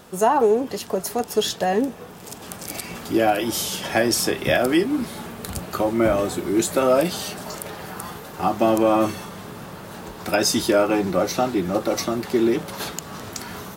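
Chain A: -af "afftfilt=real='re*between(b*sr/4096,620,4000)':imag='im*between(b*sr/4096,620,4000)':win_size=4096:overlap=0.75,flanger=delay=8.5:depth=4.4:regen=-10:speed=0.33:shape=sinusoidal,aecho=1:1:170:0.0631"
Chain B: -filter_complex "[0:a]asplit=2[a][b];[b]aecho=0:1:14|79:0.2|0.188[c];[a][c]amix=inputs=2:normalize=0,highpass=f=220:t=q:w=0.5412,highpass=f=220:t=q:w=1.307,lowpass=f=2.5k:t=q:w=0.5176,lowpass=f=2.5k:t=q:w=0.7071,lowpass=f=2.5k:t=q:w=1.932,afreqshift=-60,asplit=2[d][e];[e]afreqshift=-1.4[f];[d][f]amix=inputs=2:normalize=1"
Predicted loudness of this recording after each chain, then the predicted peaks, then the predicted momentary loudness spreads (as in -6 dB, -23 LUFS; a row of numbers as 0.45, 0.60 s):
-31.0, -25.5 LUFS; -10.0, -7.5 dBFS; 16, 18 LU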